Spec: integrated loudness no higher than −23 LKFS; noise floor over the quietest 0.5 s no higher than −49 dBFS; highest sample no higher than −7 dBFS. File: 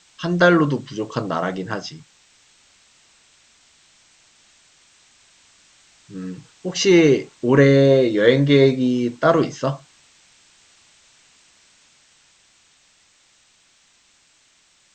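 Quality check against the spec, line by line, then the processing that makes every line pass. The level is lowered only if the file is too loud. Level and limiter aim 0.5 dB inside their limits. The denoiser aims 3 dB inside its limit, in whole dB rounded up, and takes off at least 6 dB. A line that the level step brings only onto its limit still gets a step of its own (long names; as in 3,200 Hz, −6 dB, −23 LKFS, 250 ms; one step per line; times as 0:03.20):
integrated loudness −17.5 LKFS: out of spec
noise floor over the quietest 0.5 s −59 dBFS: in spec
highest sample −1.5 dBFS: out of spec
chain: level −6 dB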